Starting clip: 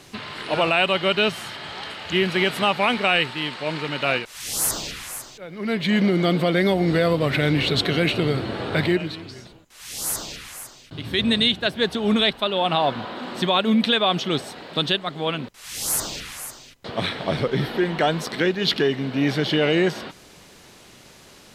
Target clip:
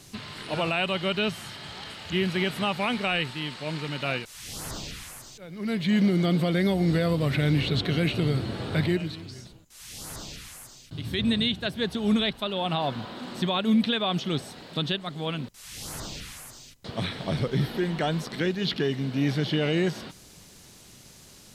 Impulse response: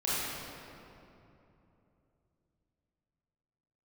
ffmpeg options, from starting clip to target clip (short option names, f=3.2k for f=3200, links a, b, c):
-filter_complex "[0:a]bass=f=250:g=9,treble=f=4k:g=10,acrossover=split=3800[a][b];[b]acompressor=threshold=-35dB:ratio=4:attack=1:release=60[c];[a][c]amix=inputs=2:normalize=0,volume=-8dB"